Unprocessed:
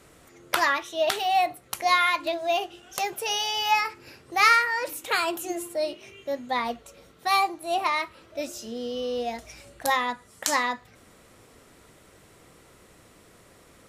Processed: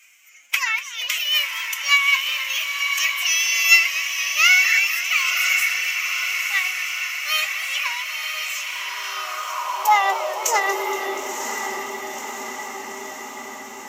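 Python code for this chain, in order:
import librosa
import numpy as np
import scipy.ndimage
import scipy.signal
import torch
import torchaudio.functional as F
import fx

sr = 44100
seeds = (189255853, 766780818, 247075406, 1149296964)

p1 = fx.ripple_eq(x, sr, per_octave=0.75, db=15)
p2 = fx.pitch_keep_formants(p1, sr, semitones=8.0)
p3 = fx.high_shelf(p2, sr, hz=9700.0, db=8.0)
p4 = p3 + fx.echo_diffused(p3, sr, ms=991, feedback_pct=66, wet_db=-5.0, dry=0)
p5 = fx.filter_sweep_highpass(p4, sr, from_hz=2200.0, to_hz=220.0, start_s=8.69, end_s=11.54, q=2.5)
p6 = fx.echo_warbled(p5, sr, ms=238, feedback_pct=77, rate_hz=2.8, cents=132, wet_db=-14.5)
y = p6 * 10.0 ** (-1.0 / 20.0)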